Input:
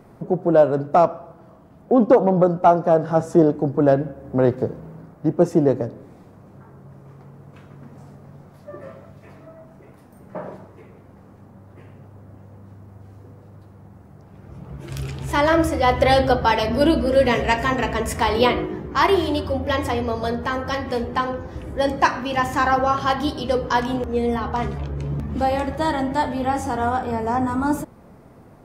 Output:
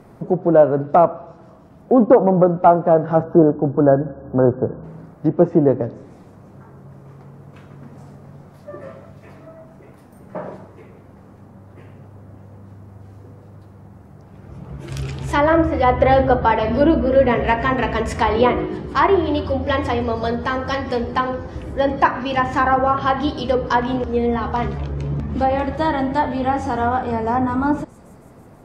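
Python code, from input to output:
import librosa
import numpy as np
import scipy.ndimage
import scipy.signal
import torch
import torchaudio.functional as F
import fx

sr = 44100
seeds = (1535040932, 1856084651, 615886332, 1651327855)

y = fx.spec_erase(x, sr, start_s=3.23, length_s=1.61, low_hz=1700.0, high_hz=11000.0)
y = fx.echo_wet_highpass(y, sr, ms=162, feedback_pct=67, hz=4800.0, wet_db=-19)
y = fx.env_lowpass_down(y, sr, base_hz=1800.0, full_db=-14.5)
y = y * librosa.db_to_amplitude(2.5)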